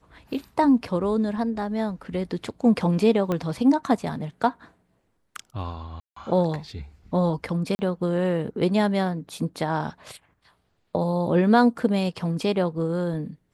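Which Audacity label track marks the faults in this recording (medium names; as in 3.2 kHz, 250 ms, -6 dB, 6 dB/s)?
3.320000	3.320000	pop -14 dBFS
6.000000	6.160000	dropout 164 ms
7.750000	7.790000	dropout 40 ms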